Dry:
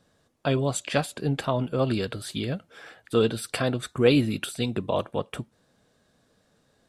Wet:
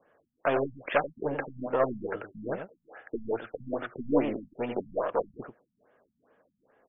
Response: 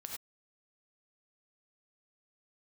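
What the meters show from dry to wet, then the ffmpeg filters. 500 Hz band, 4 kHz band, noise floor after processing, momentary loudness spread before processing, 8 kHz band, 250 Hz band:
−3.5 dB, below −15 dB, −80 dBFS, 10 LU, below −40 dB, −7.0 dB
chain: -filter_complex "[0:a]highshelf=frequency=4100:gain=-7,aeval=exprs='0.531*(cos(1*acos(clip(val(0)/0.531,-1,1)))-cos(1*PI/2))+0.0944*(cos(6*acos(clip(val(0)/0.531,-1,1)))-cos(6*PI/2))':channel_layout=same,asplit=2[link_01][link_02];[link_02]alimiter=limit=-17.5dB:level=0:latency=1:release=156,volume=-3dB[link_03];[link_01][link_03]amix=inputs=2:normalize=0,acrossover=split=340 2800:gain=0.1 1 0.0794[link_04][link_05][link_06];[link_04][link_05][link_06]amix=inputs=3:normalize=0,asplit=2[link_07][link_08];[link_08]aecho=0:1:91:0.422[link_09];[link_07][link_09]amix=inputs=2:normalize=0,afftfilt=real='re*lt(b*sr/1024,220*pow(3600/220,0.5+0.5*sin(2*PI*2.4*pts/sr)))':imag='im*lt(b*sr/1024,220*pow(3600/220,0.5+0.5*sin(2*PI*2.4*pts/sr)))':win_size=1024:overlap=0.75"

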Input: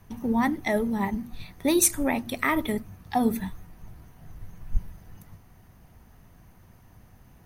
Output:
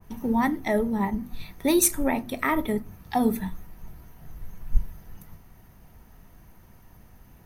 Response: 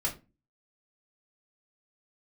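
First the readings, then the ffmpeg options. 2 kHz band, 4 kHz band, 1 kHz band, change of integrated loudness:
−1.0 dB, −1.0 dB, +1.0 dB, +0.5 dB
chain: -filter_complex "[0:a]asplit=2[link_01][link_02];[link_02]equalizer=frequency=13000:width=1.1:gain=13[link_03];[1:a]atrim=start_sample=2205[link_04];[link_03][link_04]afir=irnorm=-1:irlink=0,volume=-16dB[link_05];[link_01][link_05]amix=inputs=2:normalize=0,adynamicequalizer=threshold=0.00891:dfrequency=1700:dqfactor=0.7:tfrequency=1700:tqfactor=0.7:attack=5:release=100:ratio=0.375:range=3.5:mode=cutabove:tftype=highshelf"

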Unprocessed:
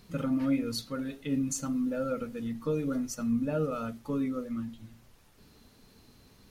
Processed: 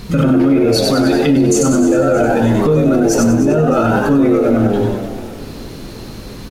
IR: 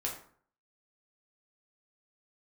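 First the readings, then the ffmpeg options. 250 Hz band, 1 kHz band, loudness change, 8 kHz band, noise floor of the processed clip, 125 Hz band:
+18.5 dB, +22.5 dB, +19.5 dB, +17.5 dB, −31 dBFS, +21.0 dB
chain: -filter_complex "[0:a]lowshelf=frequency=180:gain=4.5,asplit=2[link_01][link_02];[link_02]asplit=7[link_03][link_04][link_05][link_06][link_07][link_08][link_09];[link_03]adelay=95,afreqshift=88,volume=-5dB[link_10];[link_04]adelay=190,afreqshift=176,volume=-10.4dB[link_11];[link_05]adelay=285,afreqshift=264,volume=-15.7dB[link_12];[link_06]adelay=380,afreqshift=352,volume=-21.1dB[link_13];[link_07]adelay=475,afreqshift=440,volume=-26.4dB[link_14];[link_08]adelay=570,afreqshift=528,volume=-31.8dB[link_15];[link_09]adelay=665,afreqshift=616,volume=-37.1dB[link_16];[link_10][link_11][link_12][link_13][link_14][link_15][link_16]amix=inputs=7:normalize=0[link_17];[link_01][link_17]amix=inputs=2:normalize=0,acompressor=threshold=-28dB:ratio=6,highshelf=frequency=8700:gain=-5,aecho=1:1:309|618|927|1236|1545:0.158|0.0824|0.0429|0.0223|0.0116,asplit=2[link_18][link_19];[1:a]atrim=start_sample=2205[link_20];[link_19][link_20]afir=irnorm=-1:irlink=0,volume=-4dB[link_21];[link_18][link_21]amix=inputs=2:normalize=0,alimiter=level_in=23dB:limit=-1dB:release=50:level=0:latency=1,volume=-3.5dB"

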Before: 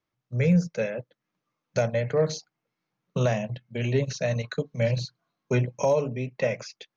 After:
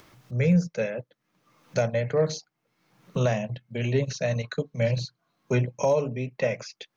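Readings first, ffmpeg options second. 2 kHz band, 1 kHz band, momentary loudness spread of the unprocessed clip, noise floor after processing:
0.0 dB, 0.0 dB, 11 LU, −80 dBFS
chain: -af "acompressor=mode=upward:threshold=-33dB:ratio=2.5"

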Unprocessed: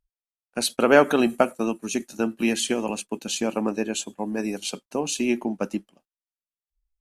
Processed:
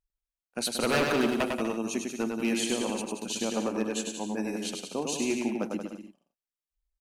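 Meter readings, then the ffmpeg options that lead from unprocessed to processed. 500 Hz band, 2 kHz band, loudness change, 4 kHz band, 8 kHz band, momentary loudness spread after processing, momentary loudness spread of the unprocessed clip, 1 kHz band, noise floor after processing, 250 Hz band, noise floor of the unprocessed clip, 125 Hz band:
−7.0 dB, −5.5 dB, −5.5 dB, −3.0 dB, −3.5 dB, 8 LU, 12 LU, −6.5 dB, below −85 dBFS, −4.5 dB, below −85 dBFS, −3.0 dB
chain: -af "aeval=exprs='0.211*(abs(mod(val(0)/0.211+3,4)-2)-1)':channel_layout=same,aecho=1:1:100|180|244|295.2|336.2:0.631|0.398|0.251|0.158|0.1,volume=-6dB"

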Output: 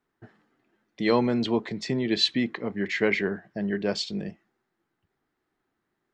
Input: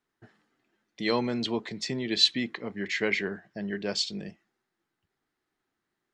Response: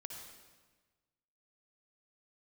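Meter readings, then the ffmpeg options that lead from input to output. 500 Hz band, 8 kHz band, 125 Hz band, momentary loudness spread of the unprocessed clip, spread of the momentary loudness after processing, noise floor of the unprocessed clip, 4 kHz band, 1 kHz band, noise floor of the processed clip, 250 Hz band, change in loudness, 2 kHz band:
+5.0 dB, −3.5 dB, +5.5 dB, 13 LU, 8 LU, −84 dBFS, −2.0 dB, +4.0 dB, −80 dBFS, +5.5 dB, +2.0 dB, +1.5 dB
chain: -af "highshelf=frequency=2600:gain=-10.5,volume=5.5dB"

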